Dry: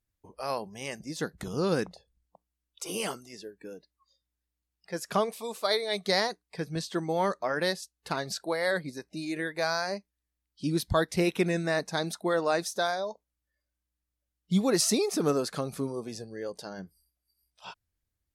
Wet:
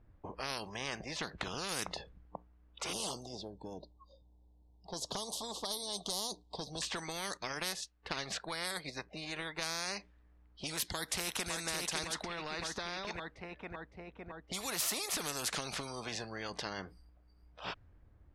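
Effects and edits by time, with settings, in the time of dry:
0:00.76–0:01.69: high-shelf EQ 5,100 Hz −8 dB
0:02.93–0:06.82: elliptic band-stop filter 920–3,600 Hz
0:07.37–0:09.62: expander for the loud parts, over −43 dBFS
0:10.87–0:11.51: delay throw 560 ms, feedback 50%, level −7.5 dB
0:12.04–0:13.05: downward compressor, threshold −35 dBFS
whole clip: low-pass that shuts in the quiet parts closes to 1,100 Hz, open at −23 dBFS; downward compressor 10 to 1, threshold −35 dBFS; every bin compressed towards the loudest bin 4 to 1; level +4.5 dB

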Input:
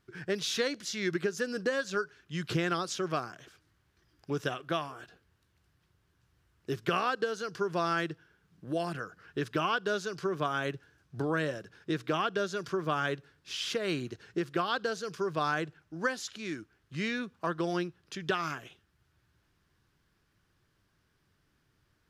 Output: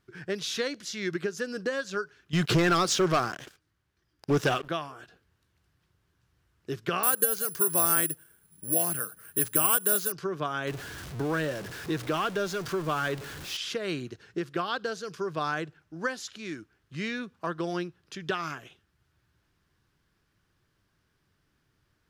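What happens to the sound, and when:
0:02.33–0:04.69: leveller curve on the samples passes 3
0:07.03–0:10.12: bad sample-rate conversion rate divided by 4×, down none, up zero stuff
0:10.67–0:13.57: converter with a step at zero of −35.5 dBFS

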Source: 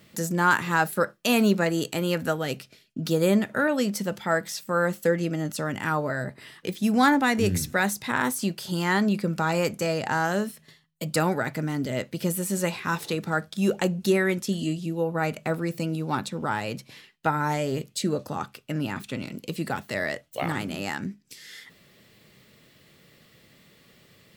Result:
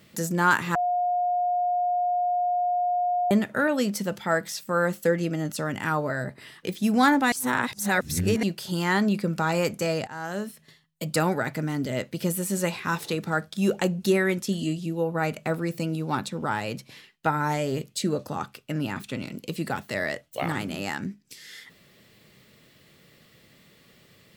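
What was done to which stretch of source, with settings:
0:00.75–0:03.31: beep over 714 Hz −21.5 dBFS
0:07.32–0:08.43: reverse
0:10.07–0:11.03: fade in equal-power, from −17.5 dB

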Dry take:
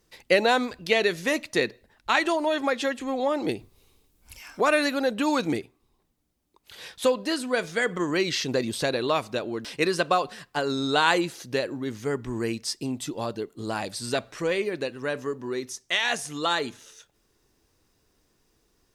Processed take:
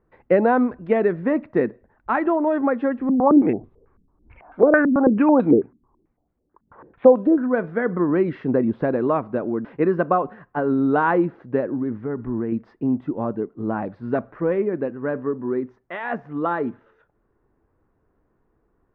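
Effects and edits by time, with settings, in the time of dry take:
0:03.09–0:07.48: low-pass on a step sequencer 9.1 Hz 210–3,600 Hz
0:11.75–0:12.52: downward compressor, threshold −28 dBFS
whole clip: low-pass filter 1,500 Hz 24 dB per octave; dynamic equaliser 230 Hz, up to +8 dB, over −42 dBFS, Q 1.1; level +2.5 dB

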